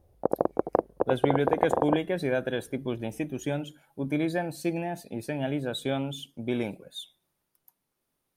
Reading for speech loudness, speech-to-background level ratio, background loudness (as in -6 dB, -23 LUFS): -31.0 LUFS, -2.0 dB, -29.0 LUFS